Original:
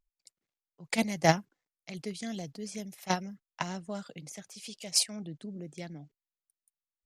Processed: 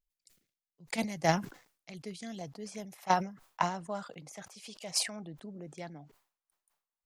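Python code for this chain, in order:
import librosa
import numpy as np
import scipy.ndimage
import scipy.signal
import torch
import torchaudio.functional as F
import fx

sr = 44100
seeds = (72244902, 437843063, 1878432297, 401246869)

y = fx.peak_eq(x, sr, hz=940.0, db=fx.steps((0.0, -11.0), (0.87, 2.5), (2.41, 12.0)), octaves=1.6)
y = fx.sustainer(y, sr, db_per_s=130.0)
y = y * 10.0 ** (-5.5 / 20.0)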